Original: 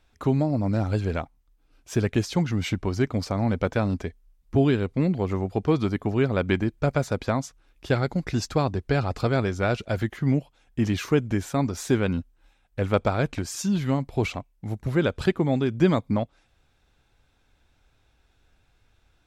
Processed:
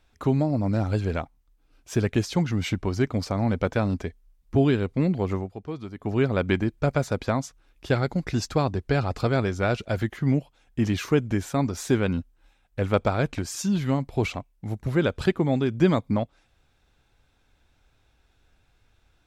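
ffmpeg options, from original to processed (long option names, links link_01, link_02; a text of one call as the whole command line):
ffmpeg -i in.wav -filter_complex "[0:a]asplit=3[link_01][link_02][link_03];[link_01]atrim=end=5.52,asetpts=PTS-STARTPTS,afade=type=out:start_time=5.34:duration=0.18:silence=0.251189[link_04];[link_02]atrim=start=5.52:end=5.96,asetpts=PTS-STARTPTS,volume=-12dB[link_05];[link_03]atrim=start=5.96,asetpts=PTS-STARTPTS,afade=type=in:duration=0.18:silence=0.251189[link_06];[link_04][link_05][link_06]concat=n=3:v=0:a=1" out.wav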